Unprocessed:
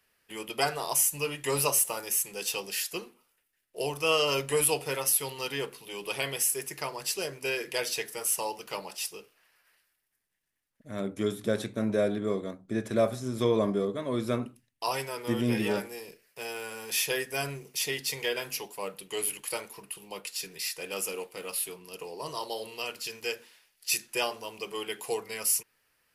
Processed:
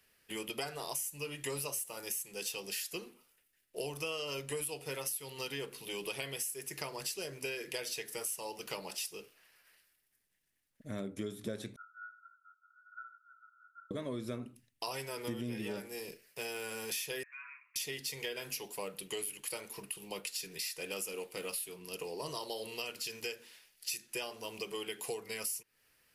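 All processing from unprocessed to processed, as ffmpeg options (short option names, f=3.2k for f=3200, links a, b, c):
-filter_complex "[0:a]asettb=1/sr,asplit=3[a][b][c];[a]atrim=end=11.764[d];[b]atrim=start=11.76:end=13.91,asetpts=PTS-STARTPTS,afade=t=in:d=0.004:c=qsin,afade=t=out:st=2.146:d=0.004:c=qsin,asuperpass=centerf=1400:order=20:qfactor=7.3,aecho=1:1:844:0.158,atrim=end_sample=94815[e];[c]atrim=start=13.906[f];[d][e]acrossfade=d=0.004:c1=hsin:c2=qsin[g];[g][f]acrossfade=d=0.004:c1=qsin:c2=hsin,asettb=1/sr,asplit=3[h][i][j];[h]atrim=end=17.234[k];[i]atrim=start=17.23:end=17.76,asetpts=PTS-STARTPTS,afade=t=in:d=0.004:c=qsin,afade=t=out:st=0.526:d=0.004:c=qsin,asuperpass=centerf=1600:order=20:qfactor=1,acompressor=threshold=-47dB:ratio=3:attack=3.2:release=140:knee=1:detection=peak[l];[j]atrim=start=17.756[m];[k][l]acrossfade=d=0.004:c1=hsin:c2=qsin[n];[n][m]acrossfade=d=0.004:c1=qsin:c2=hsin,equalizer=f=980:w=0.9:g=-5,acompressor=threshold=-39dB:ratio=6,volume=2.5dB"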